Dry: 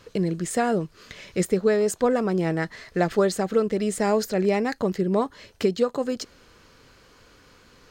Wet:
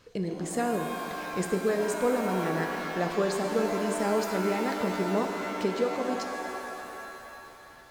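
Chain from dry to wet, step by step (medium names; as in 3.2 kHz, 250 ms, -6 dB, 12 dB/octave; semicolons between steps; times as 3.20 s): pitch-shifted reverb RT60 3 s, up +7 st, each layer -2 dB, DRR 4.5 dB; trim -7 dB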